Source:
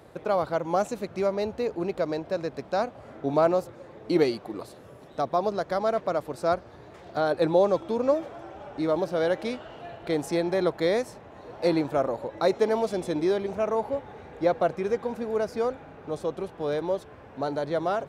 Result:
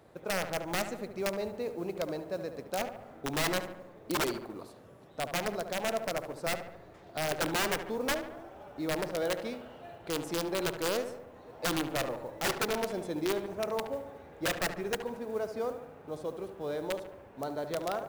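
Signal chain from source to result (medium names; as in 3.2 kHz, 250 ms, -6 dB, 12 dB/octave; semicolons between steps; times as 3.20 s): integer overflow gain 17 dB; filtered feedback delay 72 ms, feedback 61%, low-pass 2.3 kHz, level -9 dB; modulation noise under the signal 28 dB; trim -7.5 dB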